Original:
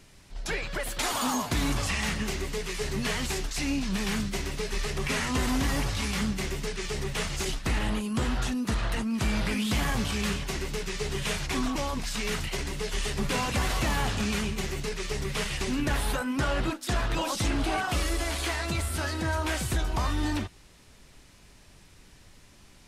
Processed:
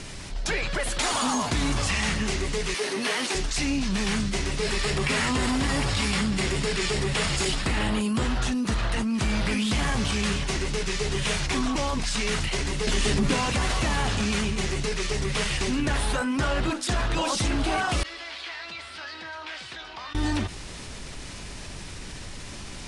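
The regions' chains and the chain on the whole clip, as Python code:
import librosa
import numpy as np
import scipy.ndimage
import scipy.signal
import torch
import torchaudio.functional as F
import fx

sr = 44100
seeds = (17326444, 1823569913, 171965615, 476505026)

y = fx.chain(x, sr, fx.highpass(hz=260.0, slope=24),
    fx.resample_bad(factor=3, down='filtered', up='hold'), at=(2.74, 3.35))
y = fx.chain(y, sr, fx.highpass(hz=58.0, slope=6),
    fx.notch(hz=6100.0, q=9.6),
    fx.env_flatten(amount_pct=50), at=(4.62, 8.23))
y = fx.chain(y, sr, fx.peak_eq(hz=250.0, db=9.5, octaves=1.0),
    fx.env_flatten(amount_pct=70), at=(12.87, 13.34))
y = fx.chain(y, sr, fx.bandpass_q(hz=5800.0, q=1.8),
    fx.air_absorb(metres=440.0), at=(18.03, 20.15))
y = scipy.signal.sosfilt(scipy.signal.ellip(4, 1.0, 50, 10000.0, 'lowpass', fs=sr, output='sos'), y)
y = fx.env_flatten(y, sr, amount_pct=50)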